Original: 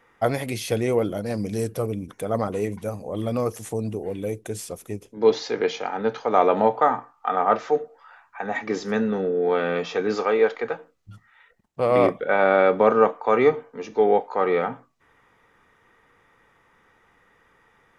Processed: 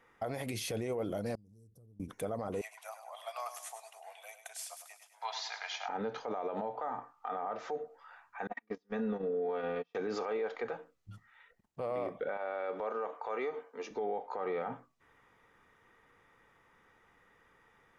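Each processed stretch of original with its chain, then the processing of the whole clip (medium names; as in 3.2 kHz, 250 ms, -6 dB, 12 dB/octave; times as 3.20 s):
1.35–2.00 s: Butterworth band-stop 2.5 kHz, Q 0.62 + amplifier tone stack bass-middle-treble 10-0-1 + compression 12:1, threshold -50 dBFS
2.61–5.89 s: Chebyshev high-pass 660 Hz, order 6 + feedback delay 102 ms, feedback 51%, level -10.5 dB
8.47–9.95 s: low-pass 4.8 kHz + comb 4.2 ms, depth 59% + gate -22 dBFS, range -39 dB
12.37–13.91 s: high-pass 380 Hz + compression 5:1, threshold -26 dBFS
whole clip: dynamic bell 710 Hz, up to +5 dB, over -30 dBFS, Q 1.1; compression, threshold -20 dBFS; peak limiter -21.5 dBFS; trim -6 dB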